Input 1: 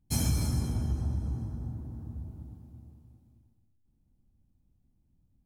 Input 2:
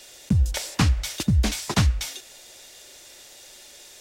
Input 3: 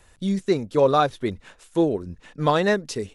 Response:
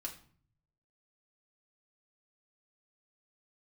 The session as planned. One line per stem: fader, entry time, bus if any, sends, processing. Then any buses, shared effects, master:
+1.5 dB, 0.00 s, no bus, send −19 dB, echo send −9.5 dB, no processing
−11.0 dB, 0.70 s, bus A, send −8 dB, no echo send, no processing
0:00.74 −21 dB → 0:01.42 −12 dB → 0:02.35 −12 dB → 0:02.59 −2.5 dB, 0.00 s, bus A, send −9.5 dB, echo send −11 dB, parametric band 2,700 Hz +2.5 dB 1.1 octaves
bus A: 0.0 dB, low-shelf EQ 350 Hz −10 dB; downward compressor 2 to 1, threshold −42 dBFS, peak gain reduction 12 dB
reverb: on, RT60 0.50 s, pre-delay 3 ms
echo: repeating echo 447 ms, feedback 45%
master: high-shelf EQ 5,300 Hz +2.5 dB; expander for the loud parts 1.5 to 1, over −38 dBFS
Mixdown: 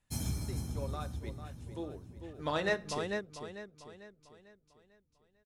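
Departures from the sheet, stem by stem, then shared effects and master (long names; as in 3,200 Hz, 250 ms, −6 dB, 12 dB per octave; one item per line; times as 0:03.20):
stem 1 +1.5 dB → −6.0 dB
stem 2: muted
master: missing high-shelf EQ 5,300 Hz +2.5 dB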